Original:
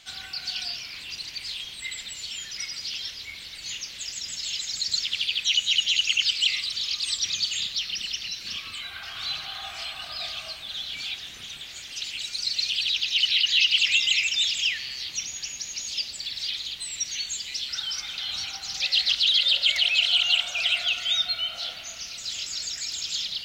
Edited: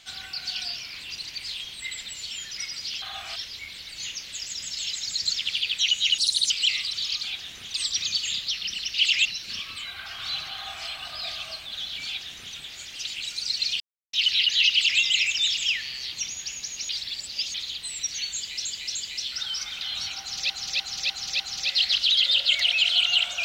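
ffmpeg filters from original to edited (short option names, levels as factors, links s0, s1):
-filter_complex "[0:a]asplit=19[s0][s1][s2][s3][s4][s5][s6][s7][s8][s9][s10][s11][s12][s13][s14][s15][s16][s17][s18];[s0]atrim=end=3.022[s19];[s1]atrim=start=9.508:end=9.852[s20];[s2]atrim=start=3.018:end=5.844[s21];[s3]atrim=start=5.84:end=6.29,asetpts=PTS-STARTPTS,asetrate=61740,aresample=44100[s22];[s4]atrim=start=6.286:end=7.022[s23];[s5]atrim=start=11.018:end=11.532[s24];[s6]atrim=start=7.018:end=8.222[s25];[s7]atrim=start=13.668:end=13.982[s26];[s8]atrim=start=8.218:end=12.77,asetpts=PTS-STARTPTS,afade=t=out:st=4.548:d=0.004:c=hsin[s27];[s9]atrim=start=12.77:end=13.1,asetpts=PTS-STARTPTS,volume=0[s28];[s10]atrim=start=13.1:end=15.862,asetpts=PTS-STARTPTS,afade=t=in:d=0.004:c=hsin[s29];[s11]atrim=start=15.858:end=16.512,asetpts=PTS-STARTPTS,areverse[s30];[s12]atrim=start=16.508:end=17.622[s31];[s13]atrim=start=17.318:end=17.622[s32];[s14]atrim=start=17.318:end=18.872[s33];[s15]atrim=start=18.568:end=18.872[s34];[s16]atrim=start=18.568:end=18.872[s35];[s17]atrim=start=18.568:end=18.872[s36];[s18]atrim=start=18.568[s37];[s19][s20]acrossfade=d=0.004:c1=hsin:c2=hsin[s38];[s38][s21]acrossfade=d=0.004:c1=hsin:c2=hsin[s39];[s39][s22]acrossfade=d=0.004:c1=hsin:c2=hsin[s40];[s40][s23]acrossfade=d=0.004:c1=hsin:c2=hsin[s41];[s41][s24]acrossfade=d=0.004:c1=hsin:c2=hsin[s42];[s42][s25]acrossfade=d=0.004:c1=hsin:c2=hsin[s43];[s43][s26]acrossfade=d=0.004:c1=hsin:c2=hsin[s44];[s27][s28][s29]concat=n=3:v=0:a=1[s45];[s44][s45]acrossfade=d=0.004:c1=hsin:c2=hsin[s46];[s46][s30]acrossfade=d=0.004:c1=hsin:c2=hsin[s47];[s47][s31]acrossfade=d=0.004:c1=hsin:c2=hsin[s48];[s48][s32]acrossfade=d=0.004:c1=hsin:c2=hsin[s49];[s49][s33]acrossfade=d=0.004:c1=hsin:c2=hsin[s50];[s50][s34]acrossfade=d=0.004:c1=hsin:c2=hsin[s51];[s51][s35]acrossfade=d=0.004:c1=hsin:c2=hsin[s52];[s52][s36]acrossfade=d=0.004:c1=hsin:c2=hsin[s53];[s53][s37]acrossfade=d=0.004:c1=hsin:c2=hsin"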